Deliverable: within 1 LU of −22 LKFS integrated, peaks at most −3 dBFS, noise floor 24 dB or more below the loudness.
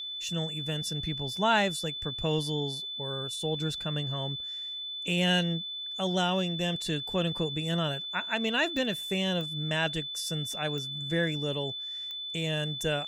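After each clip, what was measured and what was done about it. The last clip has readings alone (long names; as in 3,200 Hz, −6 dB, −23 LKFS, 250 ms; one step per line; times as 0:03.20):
number of clicks 4; interfering tone 3,500 Hz; level of the tone −35 dBFS; integrated loudness −30.0 LKFS; sample peak −13.0 dBFS; target loudness −22.0 LKFS
→ click removal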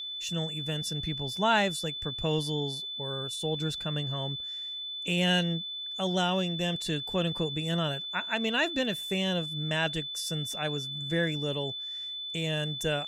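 number of clicks 0; interfering tone 3,500 Hz; level of the tone −35 dBFS
→ notch filter 3,500 Hz, Q 30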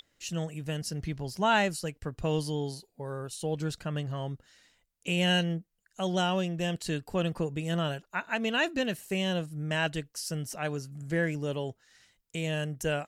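interfering tone none found; integrated loudness −31.5 LKFS; sample peak −13.5 dBFS; target loudness −22.0 LKFS
→ level +9.5 dB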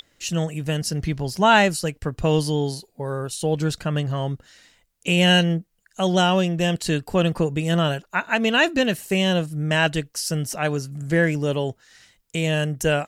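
integrated loudness −22.0 LKFS; sample peak −4.0 dBFS; background noise floor −66 dBFS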